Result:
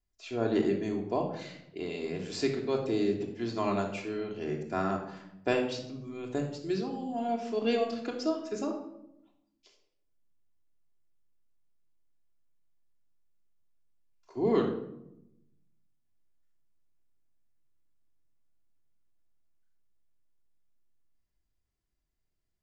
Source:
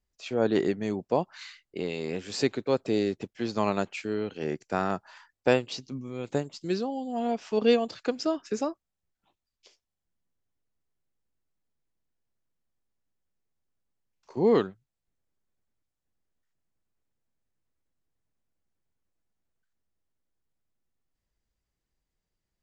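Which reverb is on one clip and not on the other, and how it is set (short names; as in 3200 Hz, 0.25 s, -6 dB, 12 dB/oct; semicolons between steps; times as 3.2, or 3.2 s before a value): shoebox room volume 2300 m³, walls furnished, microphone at 3.1 m; gain -6.5 dB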